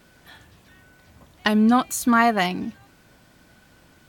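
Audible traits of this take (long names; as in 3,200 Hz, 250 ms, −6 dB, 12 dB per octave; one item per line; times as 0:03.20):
background noise floor −56 dBFS
spectral slope −4.0 dB per octave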